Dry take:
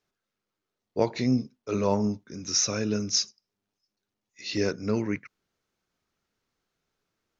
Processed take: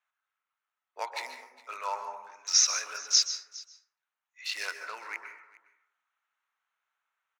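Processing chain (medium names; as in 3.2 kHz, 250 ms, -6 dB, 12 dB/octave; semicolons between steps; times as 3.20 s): local Wiener filter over 9 samples; high-pass 950 Hz 24 dB/octave; delay 410 ms -21 dB; plate-style reverb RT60 0.76 s, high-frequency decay 0.35×, pre-delay 120 ms, DRR 6.5 dB; trim +3 dB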